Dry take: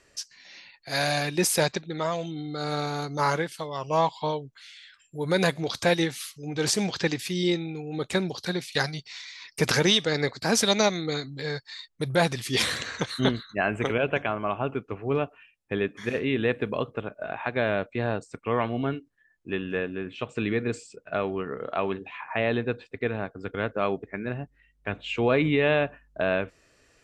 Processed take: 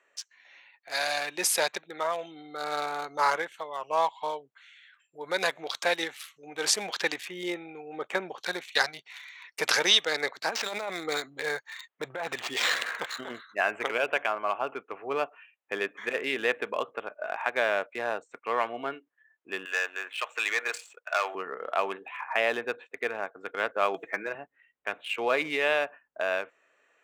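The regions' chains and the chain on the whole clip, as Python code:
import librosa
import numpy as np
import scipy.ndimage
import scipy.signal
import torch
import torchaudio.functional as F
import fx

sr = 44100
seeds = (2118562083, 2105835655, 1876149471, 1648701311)

y = fx.chain(x, sr, fx.high_shelf(hz=3800.0, db=-9.0),
    fx.notch(hz=4000.0, q=6.4), at=(7.25, 8.41))
y = fx.chain(y, sr, fx.over_compress(threshold_db=-27.0, ratio=-1.0),
    fx.resample_linear(factor=4), at=(10.49, 13.39))
y = fx.chain(y, sr, fx.highpass(hz=890.0, slope=12),
    fx.leveller(passes=2), at=(19.65, 21.35))
y = fx.chain(y, sr, fx.comb(ms=6.1, depth=0.6),
    fx.band_squash(depth_pct=100), at=(23.94, 24.35))
y = fx.wiener(y, sr, points=9)
y = scipy.signal.sosfilt(scipy.signal.butter(2, 670.0, 'highpass', fs=sr, output='sos'), y)
y = fx.rider(y, sr, range_db=3, speed_s=2.0)
y = y * 10.0 ** (1.5 / 20.0)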